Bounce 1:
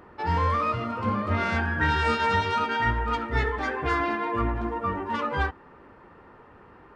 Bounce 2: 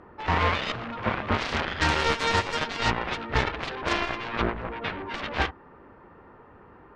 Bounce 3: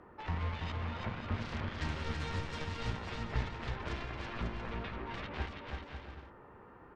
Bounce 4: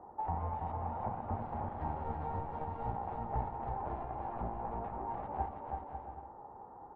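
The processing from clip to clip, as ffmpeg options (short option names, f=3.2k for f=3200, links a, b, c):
-af "aemphasis=mode=reproduction:type=75fm,aeval=exprs='0.266*(cos(1*acos(clip(val(0)/0.266,-1,1)))-cos(1*PI/2))+0.075*(cos(7*acos(clip(val(0)/0.266,-1,1)))-cos(7*PI/2))':c=same"
-filter_complex "[0:a]acrossover=split=210[a][b];[b]acompressor=threshold=-37dB:ratio=4[c];[a][c]amix=inputs=2:normalize=0,asplit=2[d][e];[e]aecho=0:1:330|544.5|683.9|774.6|833.5:0.631|0.398|0.251|0.158|0.1[f];[d][f]amix=inputs=2:normalize=0,volume=-6.5dB"
-af "lowpass=f=810:t=q:w=8.6,volume=-3.5dB"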